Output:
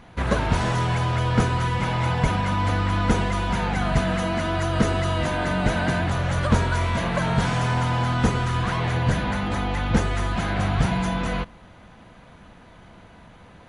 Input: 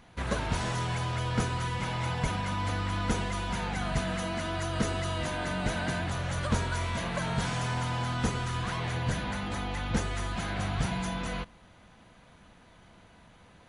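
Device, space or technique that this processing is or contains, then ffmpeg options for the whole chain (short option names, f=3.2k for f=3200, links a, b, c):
behind a face mask: -af "highshelf=f=3.3k:g=-8,volume=9dB"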